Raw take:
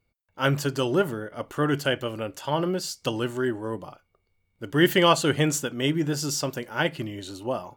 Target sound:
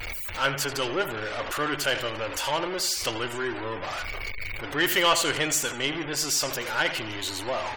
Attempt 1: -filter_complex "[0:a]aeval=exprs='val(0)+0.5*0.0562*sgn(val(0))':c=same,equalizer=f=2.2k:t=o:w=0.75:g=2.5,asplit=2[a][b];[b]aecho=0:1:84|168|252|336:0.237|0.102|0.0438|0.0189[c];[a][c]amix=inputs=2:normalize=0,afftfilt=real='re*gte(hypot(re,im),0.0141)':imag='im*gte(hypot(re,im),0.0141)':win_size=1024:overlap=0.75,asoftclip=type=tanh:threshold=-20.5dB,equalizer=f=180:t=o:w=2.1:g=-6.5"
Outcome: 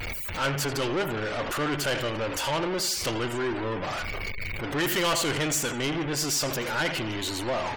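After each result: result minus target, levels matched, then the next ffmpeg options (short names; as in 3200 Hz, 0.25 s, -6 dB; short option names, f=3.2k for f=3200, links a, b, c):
soft clip: distortion +13 dB; 250 Hz band +4.5 dB
-filter_complex "[0:a]aeval=exprs='val(0)+0.5*0.0562*sgn(val(0))':c=same,equalizer=f=2.2k:t=o:w=0.75:g=2.5,asplit=2[a][b];[b]aecho=0:1:84|168|252|336:0.237|0.102|0.0438|0.0189[c];[a][c]amix=inputs=2:normalize=0,afftfilt=real='re*gte(hypot(re,im),0.0141)':imag='im*gte(hypot(re,im),0.0141)':win_size=1024:overlap=0.75,asoftclip=type=tanh:threshold=-9dB,equalizer=f=180:t=o:w=2.1:g=-6.5"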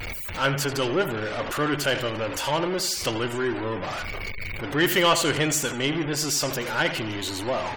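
250 Hz band +4.5 dB
-filter_complex "[0:a]aeval=exprs='val(0)+0.5*0.0562*sgn(val(0))':c=same,equalizer=f=2.2k:t=o:w=0.75:g=2.5,asplit=2[a][b];[b]aecho=0:1:84|168|252|336:0.237|0.102|0.0438|0.0189[c];[a][c]amix=inputs=2:normalize=0,afftfilt=real='re*gte(hypot(re,im),0.0141)':imag='im*gte(hypot(re,im),0.0141)':win_size=1024:overlap=0.75,asoftclip=type=tanh:threshold=-9dB,equalizer=f=180:t=o:w=2.1:g=-16.5"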